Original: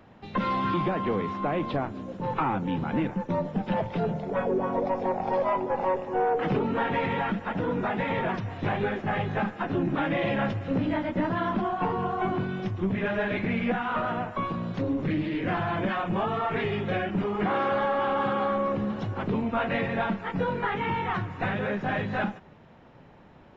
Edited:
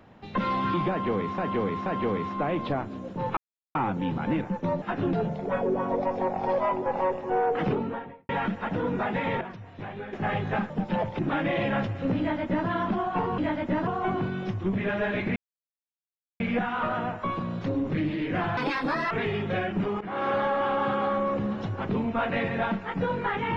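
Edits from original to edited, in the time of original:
0.9–1.38 loop, 3 plays
2.41 insert silence 0.38 s
3.48–3.97 swap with 9.54–9.85
6.45–7.13 studio fade out
8.25–8.97 gain -10 dB
10.85–11.34 copy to 12.04
13.53 insert silence 1.04 s
15.7–16.49 speed 147%
17.39–17.68 fade in, from -18 dB

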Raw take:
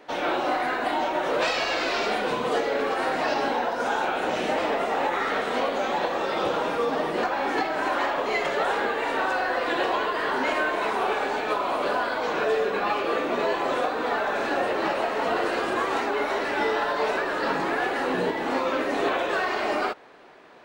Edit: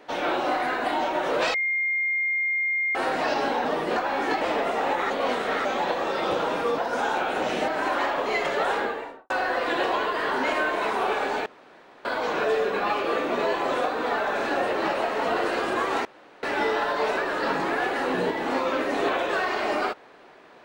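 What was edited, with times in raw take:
1.54–2.95 bleep 2120 Hz -22 dBFS
3.65–4.55 swap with 6.92–7.68
5.24–5.79 reverse
8.73–9.3 studio fade out
11.46–12.05 room tone
16.05–16.43 room tone

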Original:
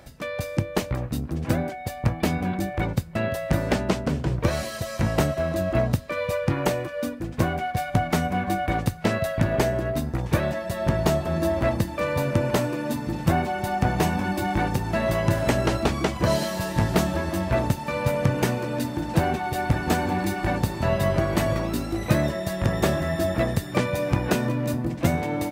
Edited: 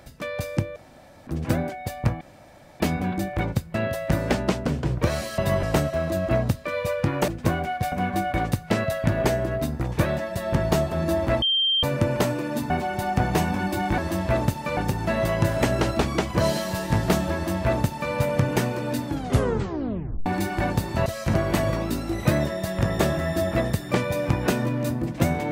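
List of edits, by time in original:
0.76–1.27 room tone
2.21 insert room tone 0.59 s
4.79–5.07 swap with 20.92–21.17
6.72–7.22 cut
7.86–8.26 cut
11.76–12.17 bleep 3160 Hz -18.5 dBFS
13.04–13.35 cut
17.2–17.99 copy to 14.63
18.93 tape stop 1.19 s

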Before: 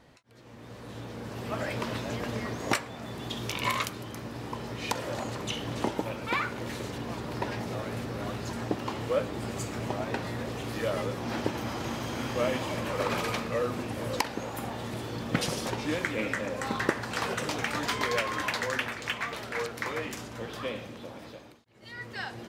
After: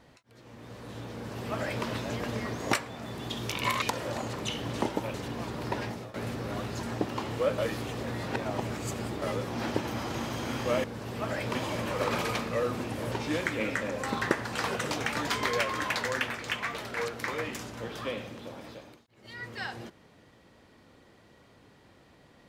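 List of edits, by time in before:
1.14–1.85 copy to 12.54
3.82–4.84 cut
6.16–6.84 cut
7.54–7.84 fade out, to -16.5 dB
9.28–10.92 reverse
14.11–15.7 cut

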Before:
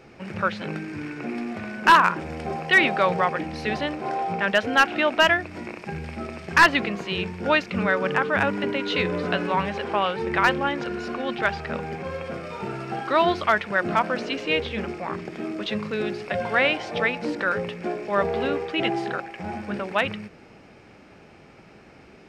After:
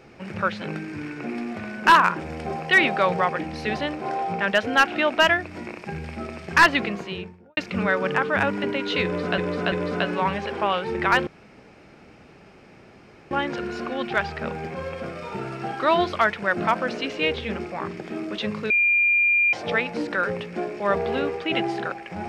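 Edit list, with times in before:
6.88–7.57 studio fade out
9.04–9.38 loop, 3 plays
10.59 insert room tone 2.04 s
15.98–16.81 bleep 2400 Hz -16 dBFS

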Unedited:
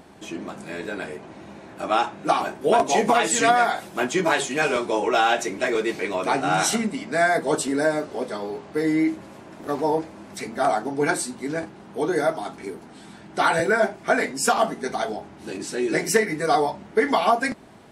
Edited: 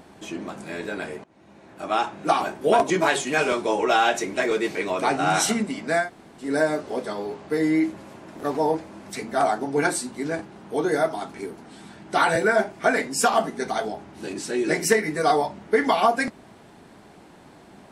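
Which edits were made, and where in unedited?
1.24–2.19 fade in, from -22 dB
2.9–4.14 cut
7.26–7.7 room tone, crossfade 0.16 s

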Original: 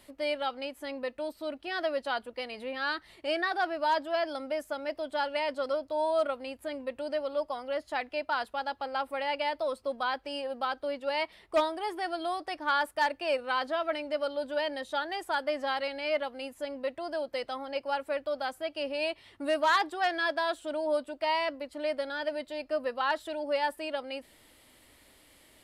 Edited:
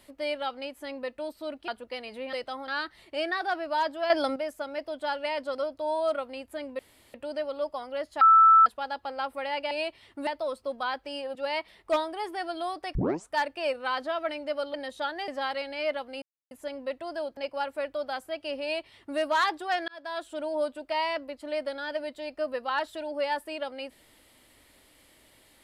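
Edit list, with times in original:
1.68–2.14 cut
4.21–4.47 gain +9 dB
6.9 insert room tone 0.35 s
7.97–8.42 bleep 1320 Hz -13 dBFS
10.55–10.99 cut
12.59 tape start 0.38 s
14.38–14.67 cut
15.21–15.54 cut
16.48 insert silence 0.29 s
17.34–17.69 move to 2.79
18.94–19.5 copy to 9.47
20.2–20.65 fade in

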